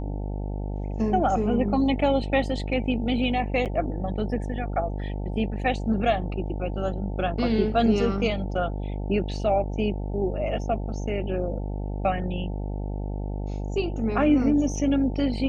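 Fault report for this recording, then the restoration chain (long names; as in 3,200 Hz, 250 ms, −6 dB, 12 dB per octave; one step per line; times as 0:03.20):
mains buzz 50 Hz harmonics 18 −30 dBFS
0:03.65–0:03.66: drop-out 7.9 ms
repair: hum removal 50 Hz, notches 18
repair the gap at 0:03.65, 7.9 ms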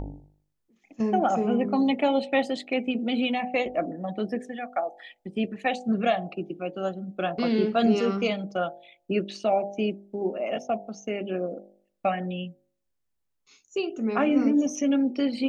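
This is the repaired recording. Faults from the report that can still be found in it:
none of them is left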